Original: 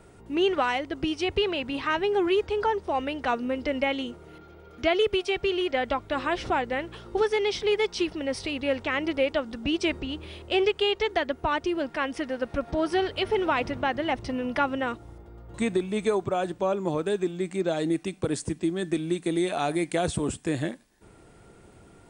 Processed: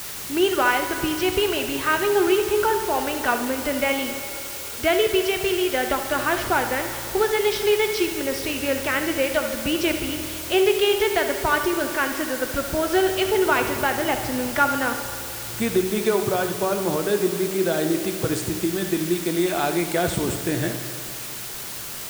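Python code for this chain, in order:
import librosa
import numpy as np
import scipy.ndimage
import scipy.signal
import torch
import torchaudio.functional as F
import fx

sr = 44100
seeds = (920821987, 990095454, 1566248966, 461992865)

y = fx.peak_eq(x, sr, hz=1500.0, db=6.5, octaves=0.29)
y = fx.echo_feedback(y, sr, ms=71, feedback_pct=47, wet_db=-13.0)
y = fx.rev_fdn(y, sr, rt60_s=2.7, lf_ratio=0.75, hf_ratio=0.8, size_ms=48.0, drr_db=6.5)
y = fx.quant_dither(y, sr, seeds[0], bits=6, dither='triangular')
y = F.gain(torch.from_numpy(y), 2.5).numpy()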